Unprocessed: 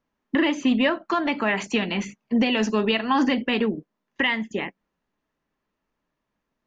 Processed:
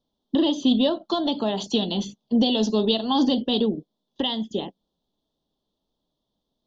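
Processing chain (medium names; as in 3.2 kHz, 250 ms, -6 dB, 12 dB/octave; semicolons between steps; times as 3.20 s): FFT filter 760 Hz 0 dB, 2.3 kHz -28 dB, 3.4 kHz +12 dB, 7.8 kHz -6 dB; trim +1 dB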